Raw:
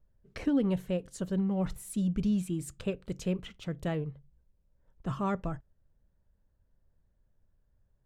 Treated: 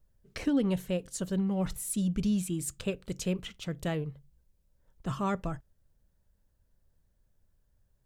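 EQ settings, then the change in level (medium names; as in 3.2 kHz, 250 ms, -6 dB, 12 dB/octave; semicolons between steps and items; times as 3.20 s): treble shelf 3.1 kHz +9.5 dB; 0.0 dB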